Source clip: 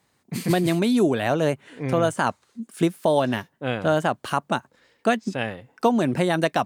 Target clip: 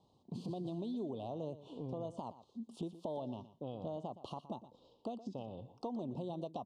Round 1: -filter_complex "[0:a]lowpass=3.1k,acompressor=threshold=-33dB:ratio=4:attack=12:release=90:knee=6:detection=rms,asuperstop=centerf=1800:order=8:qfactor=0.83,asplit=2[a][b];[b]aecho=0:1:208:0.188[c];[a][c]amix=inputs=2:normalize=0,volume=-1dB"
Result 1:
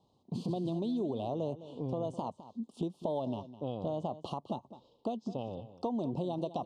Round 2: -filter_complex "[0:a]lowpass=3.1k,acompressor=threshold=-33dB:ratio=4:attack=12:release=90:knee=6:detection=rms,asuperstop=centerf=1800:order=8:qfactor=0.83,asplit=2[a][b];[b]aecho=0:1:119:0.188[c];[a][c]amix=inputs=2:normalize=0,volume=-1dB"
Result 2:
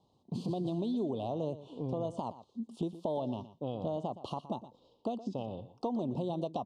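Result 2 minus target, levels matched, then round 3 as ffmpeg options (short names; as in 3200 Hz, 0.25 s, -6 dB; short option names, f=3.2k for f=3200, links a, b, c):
compressor: peak gain reduction -7 dB
-filter_complex "[0:a]lowpass=3.1k,acompressor=threshold=-42dB:ratio=4:attack=12:release=90:knee=6:detection=rms,asuperstop=centerf=1800:order=8:qfactor=0.83,asplit=2[a][b];[b]aecho=0:1:119:0.188[c];[a][c]amix=inputs=2:normalize=0,volume=-1dB"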